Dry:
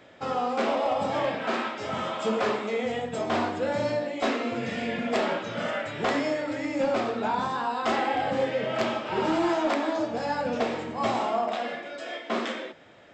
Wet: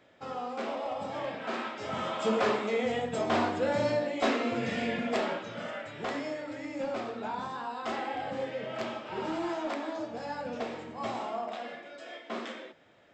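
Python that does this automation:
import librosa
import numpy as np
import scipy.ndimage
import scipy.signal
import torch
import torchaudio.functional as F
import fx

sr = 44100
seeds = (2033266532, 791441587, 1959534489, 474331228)

y = fx.gain(x, sr, db=fx.line((1.16, -9.0), (2.33, -1.0), (4.84, -1.0), (5.67, -8.5)))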